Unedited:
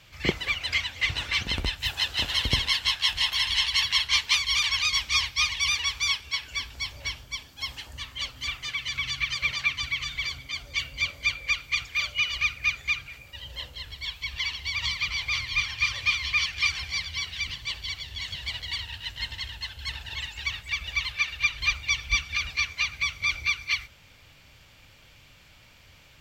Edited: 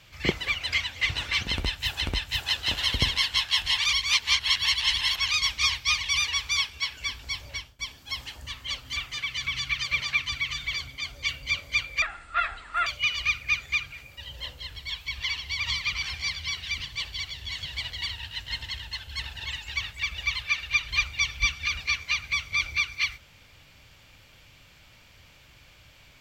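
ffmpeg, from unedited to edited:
ffmpeg -i in.wav -filter_complex "[0:a]asplit=8[link_01][link_02][link_03][link_04][link_05][link_06][link_07][link_08];[link_01]atrim=end=2.012[link_09];[link_02]atrim=start=1.518:end=3.292[link_10];[link_03]atrim=start=3.288:end=4.702,asetpts=PTS-STARTPTS,areverse[link_11];[link_04]atrim=start=4.698:end=7.3,asetpts=PTS-STARTPTS,afade=type=out:start_time=2.272:duration=0.33:silence=0.11885[link_12];[link_05]atrim=start=7.3:end=11.534,asetpts=PTS-STARTPTS,afade=type=in:duration=0.004:curve=hsin:silence=0.11885[link_13];[link_06]atrim=start=11.53:end=12.02,asetpts=PTS-STARTPTS,asetrate=25578,aresample=44100[link_14];[link_07]atrim=start=12.016:end=15.182[link_15];[link_08]atrim=start=16.718[link_16];[link_09][link_10]acrossfade=duration=0.004:curve1=hsin:curve2=hsin[link_17];[link_17][link_11]acrossfade=duration=0.004:curve1=hsin:curve2=hsin[link_18];[link_12][link_13]concat=n=2:v=0:a=1[link_19];[link_18][link_19]acrossfade=duration=0.004:curve1=hsin:curve2=hsin[link_20];[link_20][link_14]acrossfade=duration=0.004:curve1=hsin:curve2=hsin[link_21];[link_21][link_15]acrossfade=duration=0.004:curve1=hsin:curve2=hsin[link_22];[link_22][link_16]acrossfade=duration=0.004:curve1=hsin:curve2=hsin" out.wav

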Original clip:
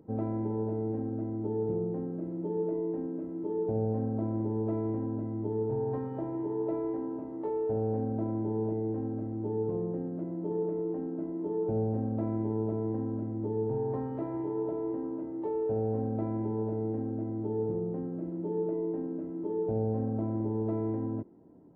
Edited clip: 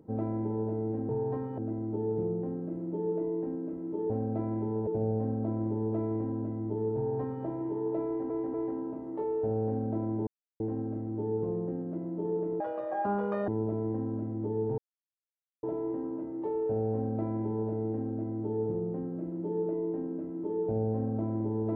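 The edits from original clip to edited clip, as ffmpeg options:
ffmpeg -i in.wav -filter_complex "[0:a]asplit=13[link_01][link_02][link_03][link_04][link_05][link_06][link_07][link_08][link_09][link_10][link_11][link_12][link_13];[link_01]atrim=end=1.092[link_14];[link_02]atrim=start=5.698:end=6.192[link_15];[link_03]atrim=start=1.088:end=3.612[link_16];[link_04]atrim=start=15.928:end=16.702[link_17];[link_05]atrim=start=3.608:end=7.042[link_18];[link_06]atrim=start=6.798:end=7.042[link_19];[link_07]atrim=start=6.798:end=8.53,asetpts=PTS-STARTPTS,afade=type=out:start_time=1.728:duration=0.004:curve=hsin[link_20];[link_08]atrim=start=8.53:end=8.86,asetpts=PTS-STARTPTS,volume=0[link_21];[link_09]atrim=start=8.86:end=10.864,asetpts=PTS-STARTPTS,afade=type=in:duration=0.004:curve=hsin[link_22];[link_10]atrim=start=10.86:end=12.48,asetpts=PTS-STARTPTS,asetrate=81144,aresample=44100,atrim=end_sample=38827,asetpts=PTS-STARTPTS[link_23];[link_11]atrim=start=12.476:end=13.78,asetpts=PTS-STARTPTS,afade=type=out:start_time=1.3:duration=0.004:curve=hsin[link_24];[link_12]atrim=start=13.78:end=14.63,asetpts=PTS-STARTPTS,volume=0[link_25];[link_13]atrim=start=14.63,asetpts=PTS-STARTPTS,afade=type=in:duration=0.004:curve=hsin[link_26];[link_14][link_15]acrossfade=duration=0.004:curve1=hsin:curve2=hsin[link_27];[link_27][link_16]acrossfade=duration=0.004:curve1=hsin:curve2=hsin[link_28];[link_28][link_17]acrossfade=duration=0.004:curve1=hsin:curve2=hsin[link_29];[link_29][link_18]acrossfade=duration=0.004:curve1=hsin:curve2=hsin[link_30];[link_30][link_19]acrossfade=duration=0.004:curve1=hsin:curve2=hsin[link_31];[link_20][link_21][link_22]concat=n=3:v=0:a=1[link_32];[link_31][link_32]acrossfade=duration=0.004:curve1=hsin:curve2=hsin[link_33];[link_33][link_23]acrossfade=duration=0.004:curve1=hsin:curve2=hsin[link_34];[link_24][link_25][link_26]concat=n=3:v=0:a=1[link_35];[link_34][link_35]acrossfade=duration=0.004:curve1=hsin:curve2=hsin" out.wav

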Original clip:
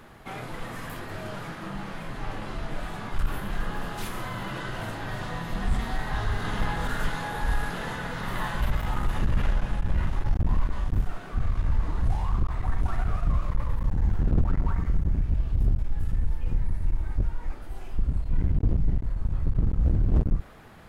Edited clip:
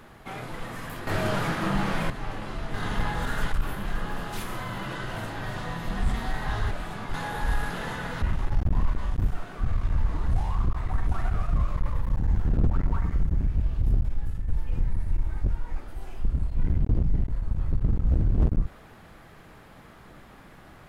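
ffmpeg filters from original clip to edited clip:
ffmpeg -i in.wav -filter_complex "[0:a]asplit=9[link_01][link_02][link_03][link_04][link_05][link_06][link_07][link_08][link_09];[link_01]atrim=end=1.072[link_10];[link_02]atrim=start=1.068:end=2.102,asetpts=PTS-STARTPTS,volume=9.5dB[link_11];[link_03]atrim=start=2.098:end=2.742[link_12];[link_04]atrim=start=6.358:end=7.142[link_13];[link_05]atrim=start=3.168:end=6.362[link_14];[link_06]atrim=start=2.738:end=3.172[link_15];[link_07]atrim=start=7.138:end=8.222[link_16];[link_08]atrim=start=9.958:end=16.22,asetpts=PTS-STARTPTS,afade=type=out:start_time=5.922:duration=0.34:silence=0.421697[link_17];[link_09]atrim=start=16.22,asetpts=PTS-STARTPTS,afade=type=in:duration=0.004:curve=hsin:silence=0.421697[link_18];[link_10][link_11]acrossfade=duration=0.004:curve1=hsin:curve2=hsin[link_19];[link_19][link_12]acrossfade=duration=0.004:curve1=hsin:curve2=hsin[link_20];[link_20][link_13]acrossfade=duration=0.004:curve1=hsin:curve2=hsin[link_21];[link_21][link_14]acrossfade=duration=0.004:curve1=hsin:curve2=hsin[link_22];[link_22][link_15]acrossfade=duration=0.004:curve1=hsin:curve2=hsin[link_23];[link_23][link_16]acrossfade=duration=0.004:curve1=hsin:curve2=hsin[link_24];[link_17][link_18]concat=n=2:v=0:a=1[link_25];[link_24][link_25]acrossfade=duration=0.004:curve1=hsin:curve2=hsin" out.wav

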